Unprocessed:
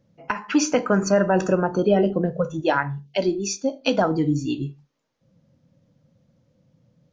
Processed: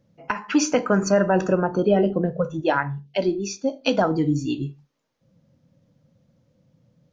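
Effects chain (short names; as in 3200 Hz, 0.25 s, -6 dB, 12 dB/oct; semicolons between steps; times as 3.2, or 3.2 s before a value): 1.37–3.67 air absorption 86 m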